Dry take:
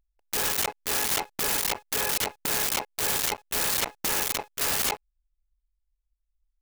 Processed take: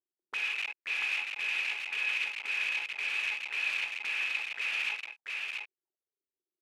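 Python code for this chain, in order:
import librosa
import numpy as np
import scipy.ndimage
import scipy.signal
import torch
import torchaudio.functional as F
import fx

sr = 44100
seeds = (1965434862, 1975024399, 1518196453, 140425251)

p1 = fx.cvsd(x, sr, bps=64000)
p2 = scipy.signal.sosfilt(scipy.signal.butter(2, 77.0, 'highpass', fs=sr, output='sos'), p1)
p3 = fx.leveller(p2, sr, passes=5)
p4 = fx.auto_wah(p3, sr, base_hz=360.0, top_hz=2500.0, q=9.5, full_db=-26.0, direction='up')
y = p4 + fx.echo_single(p4, sr, ms=685, db=-3.5, dry=0)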